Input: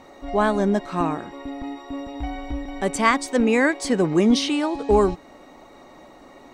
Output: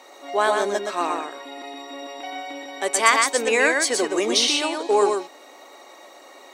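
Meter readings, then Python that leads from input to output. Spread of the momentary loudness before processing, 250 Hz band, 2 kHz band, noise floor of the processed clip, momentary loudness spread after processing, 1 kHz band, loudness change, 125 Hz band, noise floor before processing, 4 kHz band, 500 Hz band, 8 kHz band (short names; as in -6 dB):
15 LU, -9.5 dB, +4.0 dB, -47 dBFS, 18 LU, +2.0 dB, +1.0 dB, under -20 dB, -48 dBFS, +7.5 dB, 0.0 dB, +10.0 dB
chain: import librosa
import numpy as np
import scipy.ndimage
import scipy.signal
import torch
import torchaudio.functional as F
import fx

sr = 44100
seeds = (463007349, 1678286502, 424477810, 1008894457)

y = scipy.signal.sosfilt(scipy.signal.butter(4, 360.0, 'highpass', fs=sr, output='sos'), x)
y = fx.high_shelf(y, sr, hz=2500.0, db=10.5)
y = fx.notch(y, sr, hz=5000.0, q=29.0)
y = y + 10.0 ** (-4.0 / 20.0) * np.pad(y, (int(121 * sr / 1000.0), 0))[:len(y)]
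y = y * librosa.db_to_amplitude(-1.0)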